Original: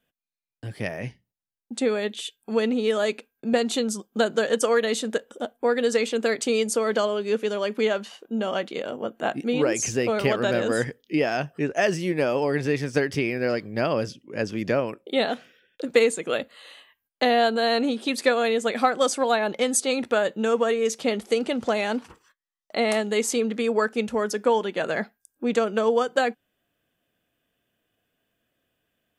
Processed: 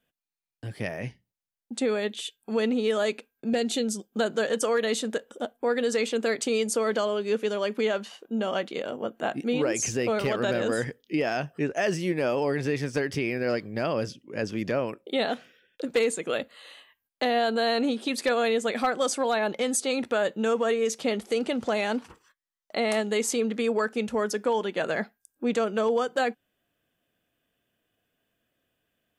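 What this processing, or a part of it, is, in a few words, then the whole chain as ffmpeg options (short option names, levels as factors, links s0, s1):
clipper into limiter: -filter_complex "[0:a]asoftclip=type=hard:threshold=0.251,alimiter=limit=0.168:level=0:latency=1:release=22,asettb=1/sr,asplit=3[s0][s1][s2];[s0]atrim=end=3.504[s3];[s1]atrim=start=3.5:end=4.13,asetpts=PTS-STARTPTS,afade=t=in:d=0.004:c=qsin,afade=t=out:st=0.626:d=0.004:c=qsin,equalizer=f=1100:t=o:w=0.45:g=-13.5[s4];[s2]atrim=start=4.126[s5];[s3][s4]acrossfade=d=0.004:c1=hsin:c2=qsin[s6];[s6][s5]acrossfade=d=0.004:c1=qsin:c2=hsin,volume=0.841"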